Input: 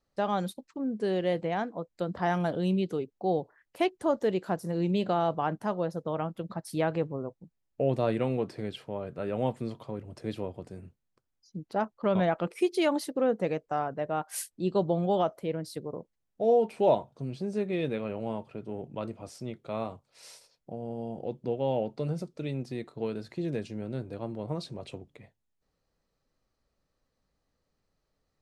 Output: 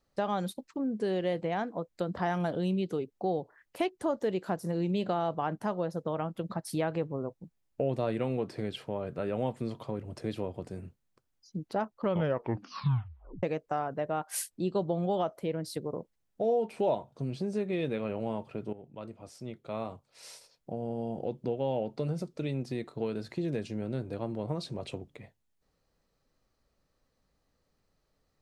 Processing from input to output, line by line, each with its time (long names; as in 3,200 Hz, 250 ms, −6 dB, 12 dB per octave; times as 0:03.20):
0:12.05: tape stop 1.38 s
0:18.73–0:20.75: fade in, from −14.5 dB
whole clip: downward compressor 2 to 1, threshold −34 dBFS; level +3 dB